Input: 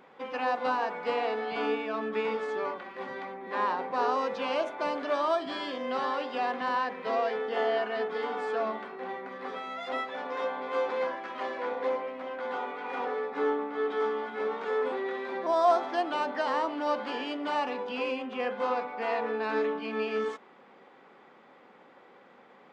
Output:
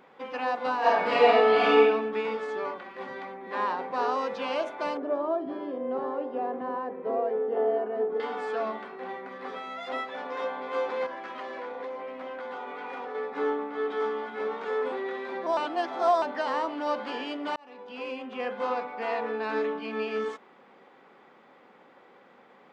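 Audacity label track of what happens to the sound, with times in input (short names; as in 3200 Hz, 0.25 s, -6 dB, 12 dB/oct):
0.790000	1.810000	reverb throw, RT60 0.82 s, DRR -9.5 dB
4.970000	8.200000	EQ curve 210 Hz 0 dB, 370 Hz +7 dB, 4700 Hz -25 dB
11.060000	13.150000	compressor, threshold -33 dBFS
15.570000	16.220000	reverse
17.560000	18.780000	fade in equal-power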